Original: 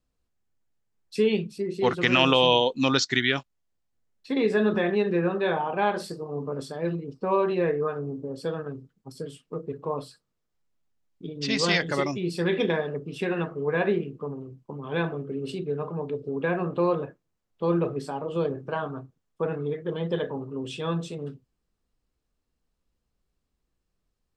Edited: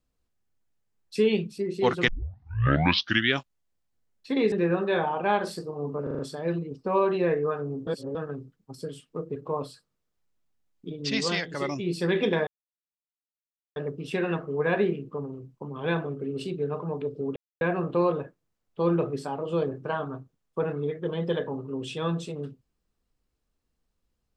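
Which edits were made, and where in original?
2.08 tape start 1.23 s
4.52–5.05 cut
6.56 stutter 0.04 s, 5 plays
8.24–8.52 reverse
11.44–12.24 dip -8 dB, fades 0.38 s
12.84 insert silence 1.29 s
16.44 insert silence 0.25 s

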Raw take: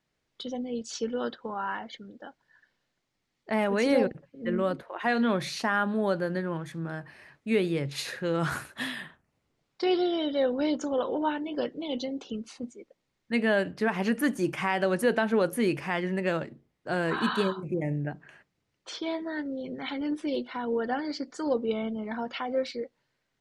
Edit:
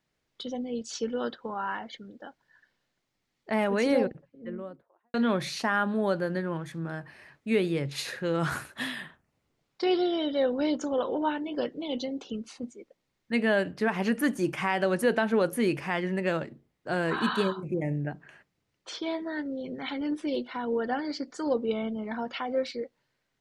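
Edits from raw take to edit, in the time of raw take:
3.67–5.14 studio fade out

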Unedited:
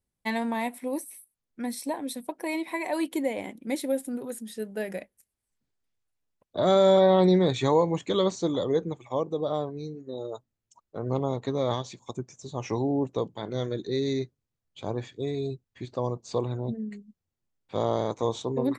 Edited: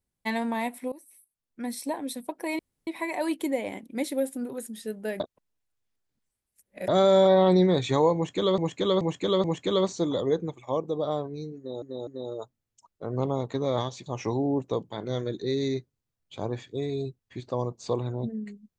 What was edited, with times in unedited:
0.92–1.77 fade in, from -21 dB
2.59 insert room tone 0.28 s
4.92–6.6 reverse
7.87–8.3 loop, 4 plays
10–10.25 loop, 3 plays
11.99–12.51 cut

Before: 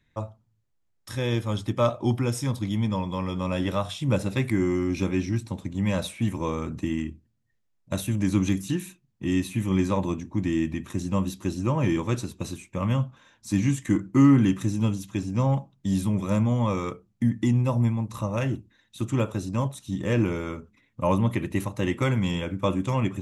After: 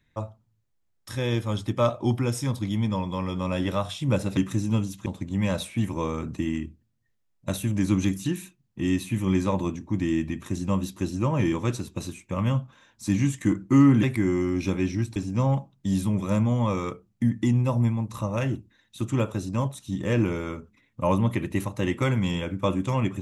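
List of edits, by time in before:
4.37–5.5 swap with 14.47–15.16

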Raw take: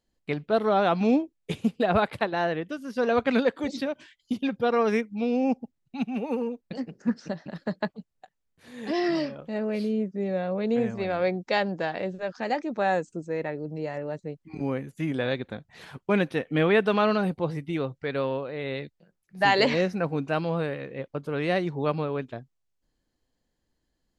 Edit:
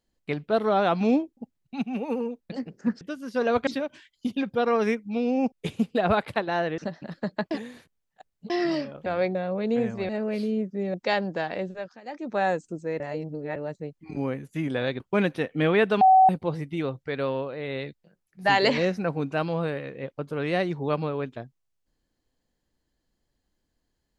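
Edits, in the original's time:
1.37–2.63 swap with 5.58–7.22
3.29–3.73 cut
7.95–8.94 reverse
9.5–10.35 swap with 11.09–11.38
12.13–12.78 dip -20.5 dB, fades 0.32 s
13.44–14 reverse
15.44–15.96 cut
16.97–17.25 bleep 757 Hz -12 dBFS

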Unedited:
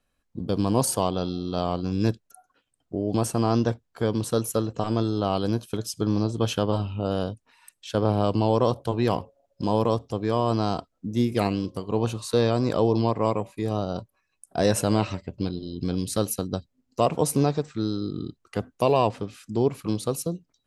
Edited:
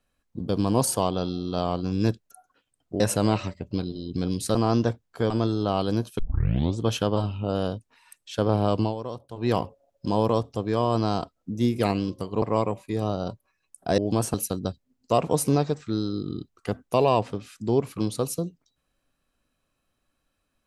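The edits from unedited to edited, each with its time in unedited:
3–3.36 swap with 14.67–16.22
4.11–4.86 cut
5.75 tape start 0.60 s
8.38–9.05 dip -12.5 dB, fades 0.13 s
11.98–13.11 cut

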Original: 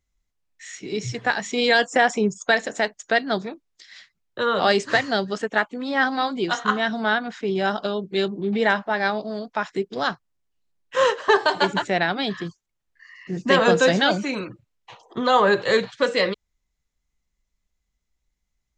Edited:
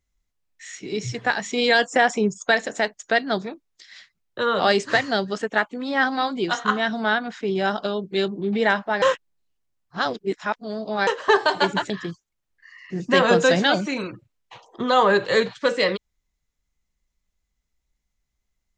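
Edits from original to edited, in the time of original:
9.02–11.07 reverse
11.9–12.27 cut

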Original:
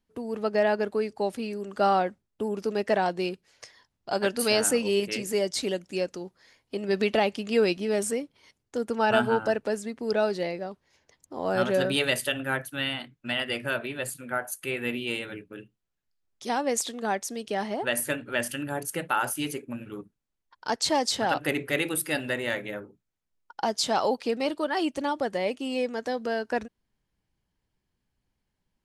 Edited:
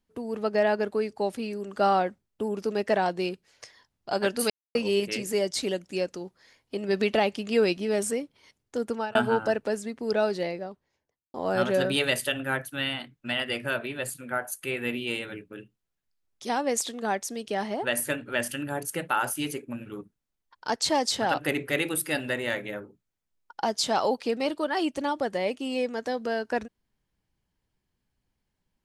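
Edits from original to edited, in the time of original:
4.5–4.75 mute
8.9–9.15 fade out
10.42–11.34 studio fade out

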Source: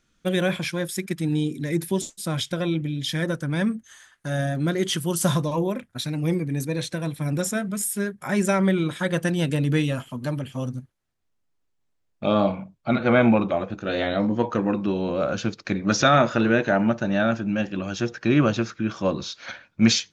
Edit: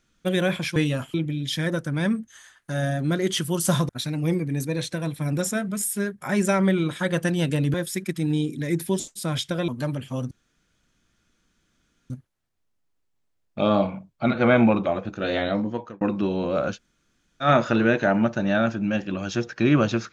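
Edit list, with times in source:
0.76–2.7 swap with 9.74–10.12
5.45–5.89 cut
10.75 insert room tone 1.79 s
14.11–14.66 fade out
15.39–16.1 room tone, crossfade 0.10 s

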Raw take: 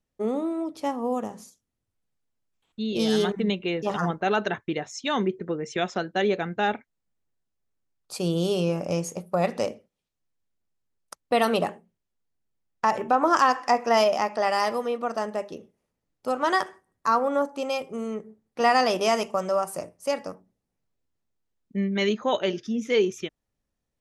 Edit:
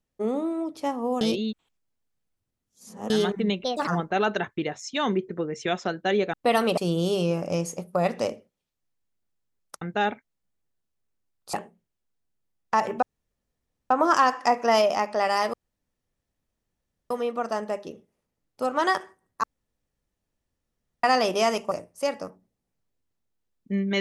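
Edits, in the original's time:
1.21–3.1 reverse
3.64–3.98 speed 145%
6.44–8.16 swap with 11.2–11.64
13.13 insert room tone 0.88 s
14.76 insert room tone 1.57 s
17.09–18.69 room tone
19.37–19.76 cut

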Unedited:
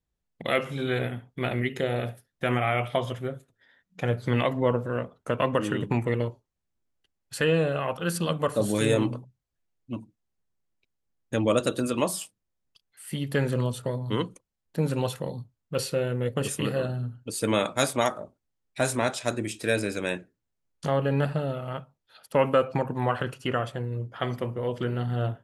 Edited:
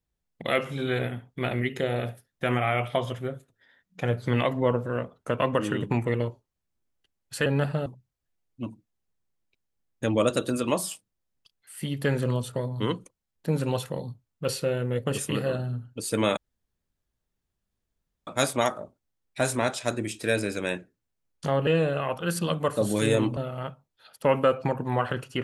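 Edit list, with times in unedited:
7.46–9.16 swap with 21.07–21.47
17.67 insert room tone 1.90 s

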